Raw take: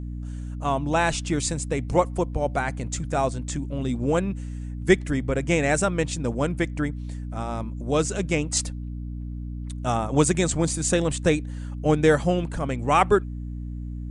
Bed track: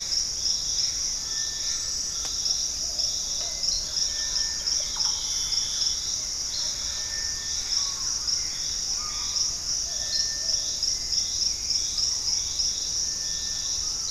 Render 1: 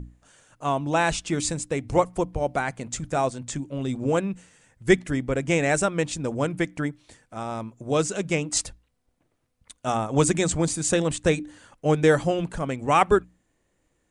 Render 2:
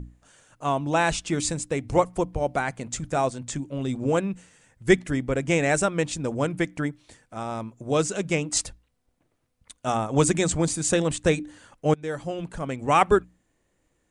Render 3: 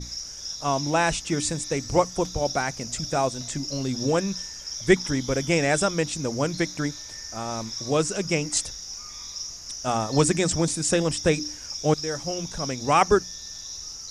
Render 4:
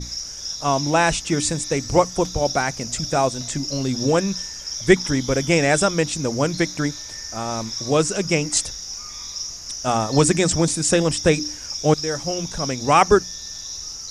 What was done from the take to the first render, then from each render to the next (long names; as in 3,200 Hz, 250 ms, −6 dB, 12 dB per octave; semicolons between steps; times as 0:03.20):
mains-hum notches 60/120/180/240/300 Hz
0:11.94–0:12.91: fade in, from −21.5 dB
mix in bed track −9 dB
level +4.5 dB; brickwall limiter −2 dBFS, peak gain reduction 1.5 dB